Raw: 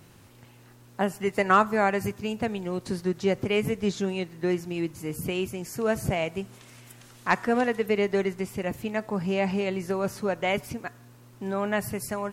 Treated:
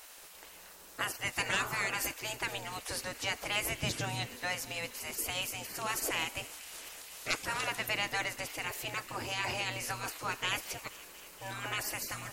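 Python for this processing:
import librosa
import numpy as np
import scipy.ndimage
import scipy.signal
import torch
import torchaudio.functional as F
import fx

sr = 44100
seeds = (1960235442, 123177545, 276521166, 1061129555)

p1 = fx.high_shelf(x, sr, hz=4300.0, db=7.5)
p2 = fx.spec_gate(p1, sr, threshold_db=-15, keep='weak')
p3 = 10.0 ** (-34.5 / 20.0) * np.tanh(p2 / 10.0 ** (-34.5 / 20.0))
p4 = p2 + (p3 * librosa.db_to_amplitude(-6.0))
p5 = fx.peak_eq(p4, sr, hz=150.0, db=14.0, octaves=1.9, at=(3.83, 4.36))
y = p5 + fx.echo_wet_highpass(p5, sr, ms=237, feedback_pct=80, hz=2100.0, wet_db=-17, dry=0)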